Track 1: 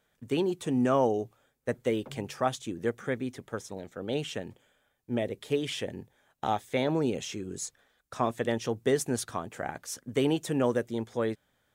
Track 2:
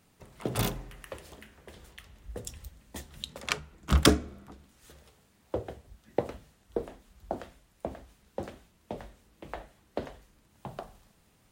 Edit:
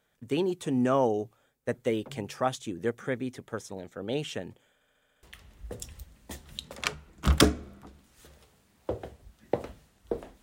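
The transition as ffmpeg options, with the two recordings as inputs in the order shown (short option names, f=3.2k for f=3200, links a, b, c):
-filter_complex "[0:a]apad=whole_dur=10.42,atrim=end=10.42,asplit=7[a][b][c][d][e][f][g];[a]atrim=end=4.812[h];[b]atrim=start=4.738:end=4.812[i];[c]atrim=start=4.738:end=4.812[j];[d]atrim=start=4.738:end=4.812[k];[e]atrim=start=4.738:end=4.812[l];[f]atrim=start=4.738:end=4.812[m];[g]atrim=start=4.738:end=4.812[n];[1:a]atrim=start=1.878:end=7.07[o];[h][i]acrossfade=d=0.004:c1=hsin:c2=hsin[p];[p][j]acrossfade=d=0.004:c1=hsin:c2=hsin[q];[q][k]acrossfade=d=0.004:c1=hsin:c2=hsin[r];[r][l]acrossfade=d=0.004:c1=hsin:c2=hsin[s];[s][m]acrossfade=d=0.004:c1=hsin:c2=hsin[t];[t][n]acrossfade=d=0.004:c1=hsin:c2=hsin[u];[u][o]acrossfade=d=0.004:c1=hsin:c2=hsin"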